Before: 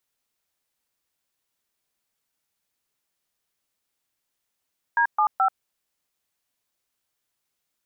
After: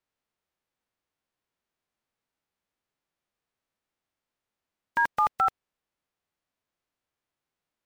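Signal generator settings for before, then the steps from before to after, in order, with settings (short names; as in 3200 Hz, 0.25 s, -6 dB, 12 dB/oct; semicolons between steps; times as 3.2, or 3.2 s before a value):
DTMF "D75", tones 86 ms, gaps 0.128 s, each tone -19.5 dBFS
spectral whitening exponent 0.3; LPF 1600 Hz 6 dB/oct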